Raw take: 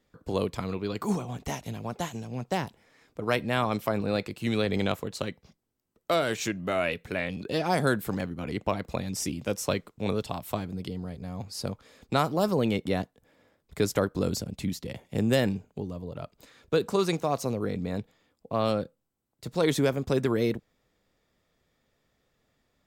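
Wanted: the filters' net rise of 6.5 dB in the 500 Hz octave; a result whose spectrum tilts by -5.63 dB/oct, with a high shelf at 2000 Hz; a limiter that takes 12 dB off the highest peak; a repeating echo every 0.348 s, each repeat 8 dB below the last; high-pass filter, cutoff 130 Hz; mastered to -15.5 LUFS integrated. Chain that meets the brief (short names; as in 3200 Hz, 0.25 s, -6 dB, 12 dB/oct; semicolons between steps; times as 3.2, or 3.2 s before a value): HPF 130 Hz; bell 500 Hz +8 dB; high shelf 2000 Hz -3 dB; limiter -19.5 dBFS; feedback echo 0.348 s, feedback 40%, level -8 dB; gain +15.5 dB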